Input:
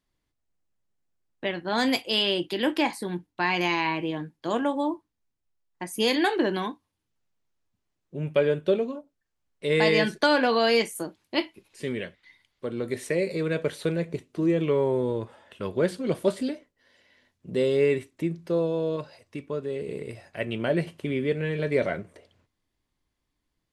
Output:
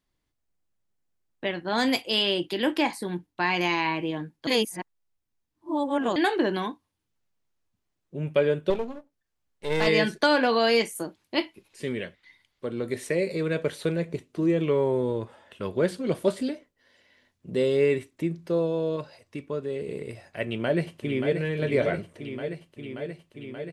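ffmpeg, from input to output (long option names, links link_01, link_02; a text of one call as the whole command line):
ffmpeg -i in.wav -filter_complex "[0:a]asettb=1/sr,asplit=3[link_01][link_02][link_03];[link_01]atrim=end=8.704[link_04];[link_02]atrim=start=8.7:end=9.87,asetpts=PTS-STARTPTS,afade=type=in:duration=0.004:curve=qsin,afade=type=out:start_time=1.166:duration=0.004:curve=qsin,aeval=exprs='if(lt(val(0),0),0.251*val(0),val(0))':channel_layout=same[link_05];[link_03]atrim=start=9.866[link_06];[link_04][link_05]acrossfade=duration=0.004:curve1=hsin:curve2=qsin[link_07];[link_07][link_06]acrossfade=duration=0.004:curve1=qsin:curve2=hsin,asplit=2[link_08][link_09];[link_09]afade=type=in:start_time=20.44:duration=0.01,afade=type=out:start_time=21.37:duration=0.01,aecho=0:1:580|1160|1740|2320|2900|3480|4060|4640|5220|5800|6380|6960:0.446684|0.357347|0.285877|0.228702|0.182962|0.146369|0.117095|0.0936763|0.0749411|0.0599529|0.0479623|0.0383698[link_10];[link_08][link_10]amix=inputs=2:normalize=0,asplit=3[link_11][link_12][link_13];[link_11]atrim=end=4.472[link_14];[link_12]atrim=start=4.468:end=6.162,asetpts=PTS-STARTPTS,areverse[link_15];[link_13]atrim=start=6.158[link_16];[link_14][link_15]acrossfade=duration=0.004:curve1=hsin:curve2=hsin[link_17];[link_17][link_16]acrossfade=duration=0.004:curve1=hsin:curve2=hsin" out.wav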